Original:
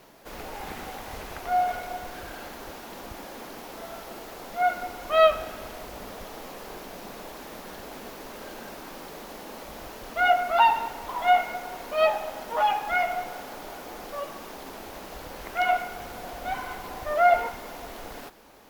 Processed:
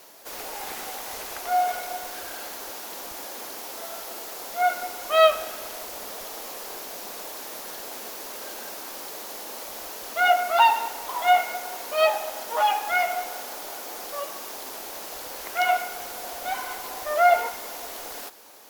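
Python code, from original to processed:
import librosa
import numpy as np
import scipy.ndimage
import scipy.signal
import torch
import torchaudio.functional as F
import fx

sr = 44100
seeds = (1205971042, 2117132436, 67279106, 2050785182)

y = fx.bass_treble(x, sr, bass_db=-15, treble_db=10)
y = y * librosa.db_to_amplitude(1.5)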